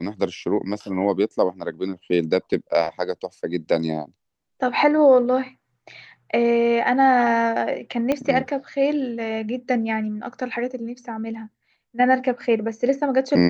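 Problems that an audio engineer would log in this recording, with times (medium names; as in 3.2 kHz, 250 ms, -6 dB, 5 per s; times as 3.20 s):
8.12 s: pop -10 dBFS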